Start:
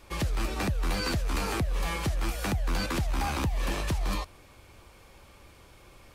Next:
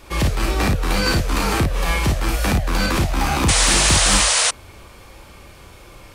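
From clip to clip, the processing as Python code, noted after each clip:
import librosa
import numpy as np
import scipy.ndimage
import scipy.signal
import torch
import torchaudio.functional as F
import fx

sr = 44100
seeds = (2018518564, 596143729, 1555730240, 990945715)

y = fx.room_early_taps(x, sr, ms=(34, 55), db=(-6.0, -5.0))
y = fx.spec_paint(y, sr, seeds[0], shape='noise', start_s=3.48, length_s=1.03, low_hz=460.0, high_hz=10000.0, level_db=-26.0)
y = F.gain(torch.from_numpy(y), 9.0).numpy()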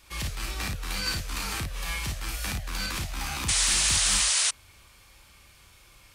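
y = fx.tone_stack(x, sr, knobs='5-5-5')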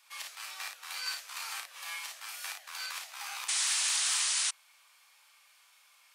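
y = scipy.signal.sosfilt(scipy.signal.butter(4, 750.0, 'highpass', fs=sr, output='sos'), x)
y = F.gain(torch.from_numpy(y), -6.0).numpy()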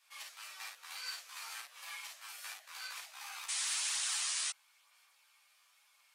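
y = fx.chorus_voices(x, sr, voices=2, hz=0.5, base_ms=13, depth_ms=4.8, mix_pct=50)
y = F.gain(torch.from_numpy(y), -3.0).numpy()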